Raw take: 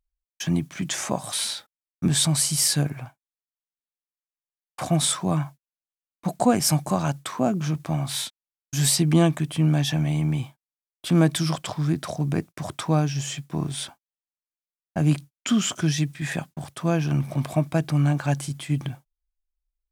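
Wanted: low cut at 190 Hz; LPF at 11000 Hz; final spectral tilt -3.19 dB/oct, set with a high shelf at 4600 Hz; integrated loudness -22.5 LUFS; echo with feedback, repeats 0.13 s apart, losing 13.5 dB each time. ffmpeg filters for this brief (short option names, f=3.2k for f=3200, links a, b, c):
-af "highpass=190,lowpass=11k,highshelf=f=4.6k:g=7.5,aecho=1:1:130|260:0.211|0.0444,volume=1dB"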